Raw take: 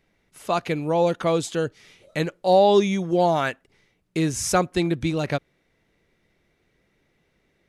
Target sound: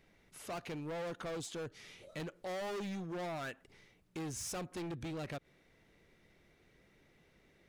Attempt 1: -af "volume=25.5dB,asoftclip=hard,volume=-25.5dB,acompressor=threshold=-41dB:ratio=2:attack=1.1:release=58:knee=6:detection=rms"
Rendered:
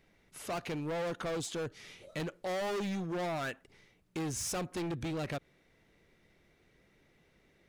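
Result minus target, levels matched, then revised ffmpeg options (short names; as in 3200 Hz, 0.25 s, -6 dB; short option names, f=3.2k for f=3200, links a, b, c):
compressor: peak gain reduction -5.5 dB
-af "volume=25.5dB,asoftclip=hard,volume=-25.5dB,acompressor=threshold=-51.5dB:ratio=2:attack=1.1:release=58:knee=6:detection=rms"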